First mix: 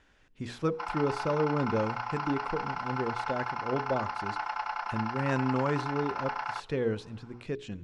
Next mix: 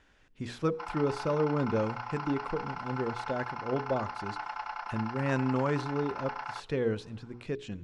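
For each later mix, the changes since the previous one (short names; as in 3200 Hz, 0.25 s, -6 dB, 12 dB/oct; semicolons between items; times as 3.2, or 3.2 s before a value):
background -4.0 dB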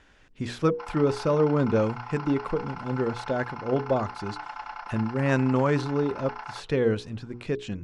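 speech +7.0 dB; reverb: off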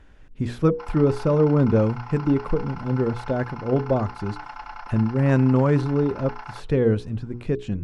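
speech: add tilt -2.5 dB/oct; master: remove LPF 7200 Hz 12 dB/oct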